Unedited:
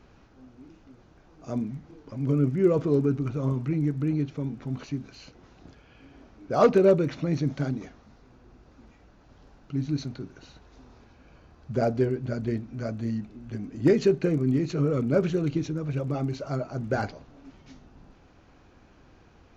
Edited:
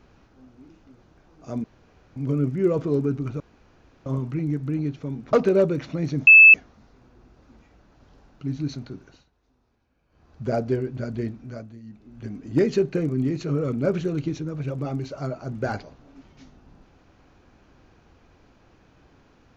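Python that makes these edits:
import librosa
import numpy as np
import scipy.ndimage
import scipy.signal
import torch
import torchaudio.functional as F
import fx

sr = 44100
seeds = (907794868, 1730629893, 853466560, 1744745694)

y = fx.edit(x, sr, fx.room_tone_fill(start_s=1.64, length_s=0.52),
    fx.insert_room_tone(at_s=3.4, length_s=0.66),
    fx.cut(start_s=4.67, length_s=1.95),
    fx.bleep(start_s=7.56, length_s=0.27, hz=2620.0, db=-6.0),
    fx.fade_down_up(start_s=10.21, length_s=1.52, db=-16.5, fade_s=0.35, curve='qsin'),
    fx.fade_down_up(start_s=12.62, length_s=0.95, db=-16.5, fade_s=0.47), tone=tone)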